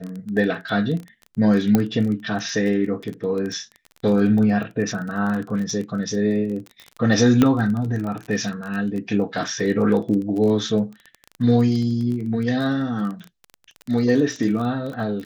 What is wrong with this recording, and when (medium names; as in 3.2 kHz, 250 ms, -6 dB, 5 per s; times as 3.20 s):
crackle 19 per s -27 dBFS
1.75 s: pop -5 dBFS
7.42 s: pop -5 dBFS